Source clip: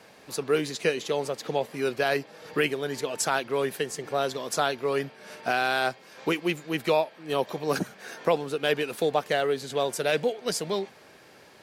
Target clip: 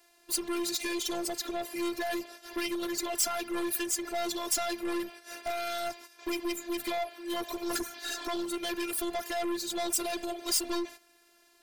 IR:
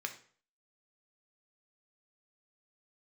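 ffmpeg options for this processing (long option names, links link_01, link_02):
-filter_complex "[0:a]agate=range=-15dB:threshold=-44dB:ratio=16:detection=peak,asettb=1/sr,asplit=3[link_01][link_02][link_03];[link_01]atrim=end=7.944[link_04];[link_02]atrim=start=7.94:end=8.45,asetpts=PTS-STARTPTS,afade=type=in:duration=0.004:curve=qsin,afade=type=out:start_time=0.506:duration=0.004:curve=qsin,equalizer=frequency=250:width_type=o:width=1:gain=6,equalizer=frequency=1000:width_type=o:width=1:gain=4,equalizer=frequency=4000:width_type=o:width=1:gain=10[link_05];[link_03]atrim=start=8.446[link_06];[link_04][link_05]acrossfade=duration=0.004:curve1=hsin:curve2=qsin[link_07];[link_07][link_06]acrossfade=duration=0.004:curve1=qsin:curve2=hsin,alimiter=limit=-19dB:level=0:latency=1:release=23,afftfilt=real='hypot(re,im)*cos(PI*b)':imag='0':win_size=512:overlap=0.75,aeval=exprs='(tanh(50.1*val(0)+0.25)-tanh(0.25))/50.1':channel_layout=same,crystalizer=i=2.5:c=0,volume=5dB"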